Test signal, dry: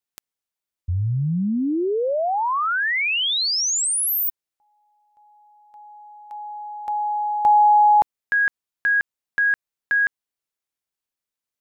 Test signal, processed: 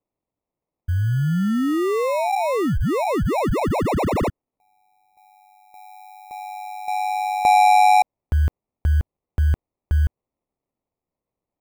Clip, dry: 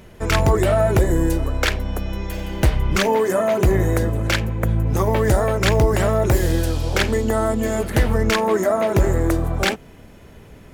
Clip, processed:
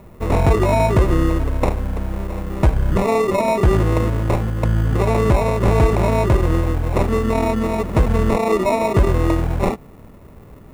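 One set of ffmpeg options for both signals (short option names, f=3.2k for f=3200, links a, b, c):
-filter_complex "[0:a]acrusher=samples=28:mix=1:aa=0.000001,equalizer=f=4.8k:w=0.65:g=-12.5,acrossover=split=9200[a][b];[b]acompressor=threshold=-49dB:ratio=4:attack=1:release=60[c];[a][c]amix=inputs=2:normalize=0,volume=2dB"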